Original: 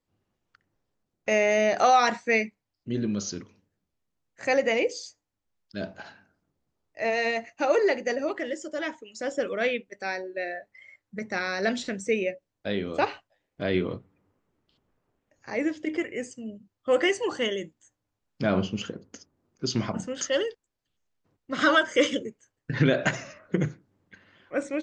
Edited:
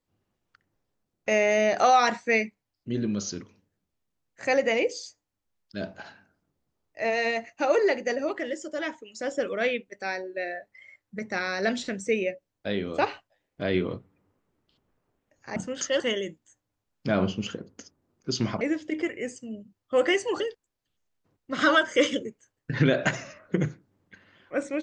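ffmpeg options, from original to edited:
ffmpeg -i in.wav -filter_complex "[0:a]asplit=5[link_01][link_02][link_03][link_04][link_05];[link_01]atrim=end=15.562[link_06];[link_02]atrim=start=19.958:end=20.402[link_07];[link_03]atrim=start=17.348:end=19.962[link_08];[link_04]atrim=start=15.558:end=17.352[link_09];[link_05]atrim=start=20.398[link_10];[link_06][link_07]acrossfade=duration=0.004:curve1=hsin:curve2=hsin[link_11];[link_11][link_08]acrossfade=duration=0.004:curve1=hsin:curve2=hsin[link_12];[link_12][link_09]acrossfade=duration=0.004:curve1=hsin:curve2=hsin[link_13];[link_13][link_10]acrossfade=duration=0.004:curve1=hsin:curve2=hsin" out.wav

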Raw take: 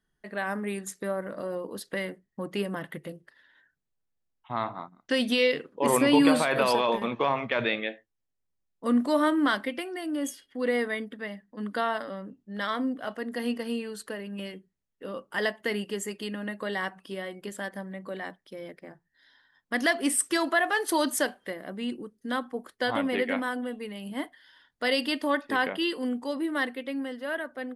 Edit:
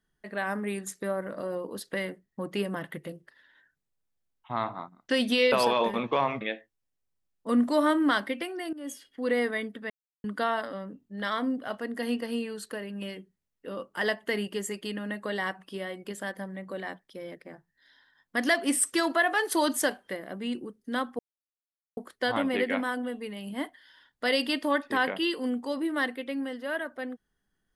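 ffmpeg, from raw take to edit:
ffmpeg -i in.wav -filter_complex "[0:a]asplit=7[link_01][link_02][link_03][link_04][link_05][link_06][link_07];[link_01]atrim=end=5.522[link_08];[link_02]atrim=start=6.598:end=7.492[link_09];[link_03]atrim=start=7.778:end=10.1,asetpts=PTS-STARTPTS,afade=type=out:start_time=2.318:duration=0.004:curve=hsin:silence=0.125893[link_10];[link_04]atrim=start=10.1:end=11.27,asetpts=PTS-STARTPTS,afade=type=in:duration=0.35:silence=0.125893,afade=type=out:start_time=1.166:duration=0.004:curve=hsin[link_11];[link_05]atrim=start=11.27:end=11.61,asetpts=PTS-STARTPTS,volume=0[link_12];[link_06]atrim=start=11.61:end=22.56,asetpts=PTS-STARTPTS,afade=type=in:duration=0.004:curve=hsin,afade=type=out:start_time=10.946:duration=0.004:curve=hsin,apad=pad_dur=0.78[link_13];[link_07]atrim=start=22.56,asetpts=PTS-STARTPTS,afade=type=in:duration=0.004:curve=hsin[link_14];[link_08][link_09]acrossfade=duration=0.004:curve1=hsin:curve2=hsin[link_15];[link_10][link_11][link_12][link_13][link_14]concat=n=5:v=0:a=1[link_16];[link_15][link_16]acrossfade=duration=0.004:curve1=hsin:curve2=hsin" out.wav

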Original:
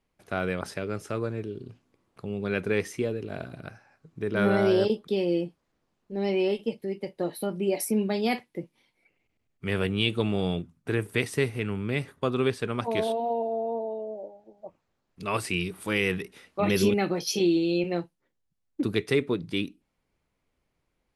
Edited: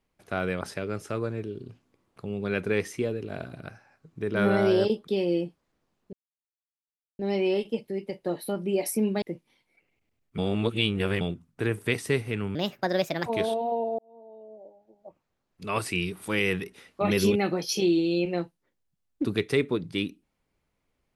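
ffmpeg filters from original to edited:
ffmpeg -i in.wav -filter_complex "[0:a]asplit=8[link_01][link_02][link_03][link_04][link_05][link_06][link_07][link_08];[link_01]atrim=end=6.13,asetpts=PTS-STARTPTS,afade=type=out:start_time=6.126:duration=0.004:curve=hsin,apad=pad_dur=1.06[link_09];[link_02]atrim=start=6.13:end=8.162,asetpts=PTS-STARTPTS,afade=type=in:duration=0.004:curve=hsin[link_10];[link_03]atrim=start=8.498:end=9.662[link_11];[link_04]atrim=start=9.658:end=10.492,asetpts=PTS-STARTPTS,areverse[link_12];[link_05]atrim=start=10.488:end=11.834[link_13];[link_06]atrim=start=11.83:end=12.84,asetpts=PTS-STARTPTS,asetrate=63063,aresample=44100[link_14];[link_07]atrim=start=12.836:end=13.57,asetpts=PTS-STARTPTS,afade=type=out:start_time=0.73:duration=0.004:curve=hsin[link_15];[link_08]atrim=start=13.57,asetpts=PTS-STARTPTS,afade=type=in:duration=1.81[link_16];[link_09][link_10]concat=n=2:v=0:a=1[link_17];[link_17][link_11]acrossfade=duration=0.004:curve1=hsin:curve2=hsin[link_18];[link_18][link_12]acrossfade=duration=0.004:curve1=hsin:curve2=hsin[link_19];[link_19][link_13]acrossfade=duration=0.004:curve1=hsin:curve2=hsin[link_20];[link_20][link_14]acrossfade=duration=0.004:curve1=hsin:curve2=hsin[link_21];[link_15][link_16]concat=n=2:v=0:a=1[link_22];[link_21][link_22]acrossfade=duration=0.004:curve1=hsin:curve2=hsin" out.wav

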